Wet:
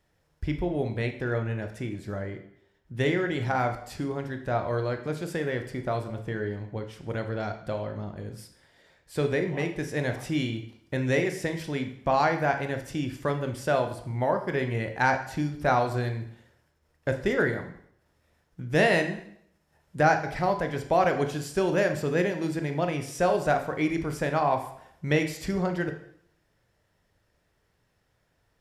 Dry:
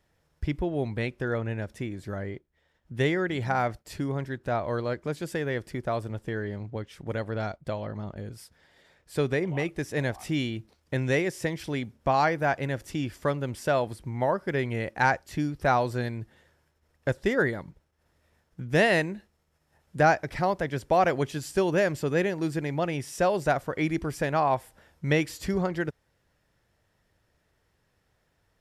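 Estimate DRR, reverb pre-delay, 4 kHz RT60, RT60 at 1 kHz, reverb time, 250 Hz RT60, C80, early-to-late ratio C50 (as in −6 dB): 5.5 dB, 6 ms, 0.65 s, 0.70 s, 0.70 s, 0.65 s, 13.0 dB, 9.5 dB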